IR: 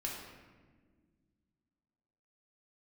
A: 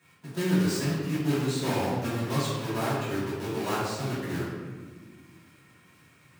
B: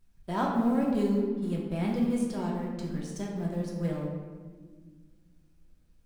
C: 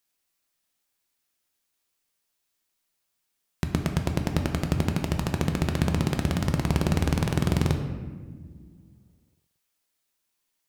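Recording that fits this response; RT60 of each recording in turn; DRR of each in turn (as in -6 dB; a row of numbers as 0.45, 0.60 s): B; not exponential, not exponential, not exponential; -11.0, -3.0, 4.0 dB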